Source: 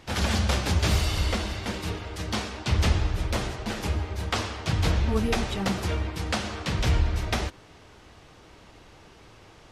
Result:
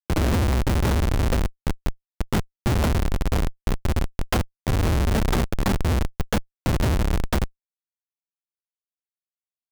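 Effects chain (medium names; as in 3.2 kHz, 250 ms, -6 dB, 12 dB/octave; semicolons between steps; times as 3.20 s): formant shift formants +6 st; Schmitt trigger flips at -21.5 dBFS; trim +7.5 dB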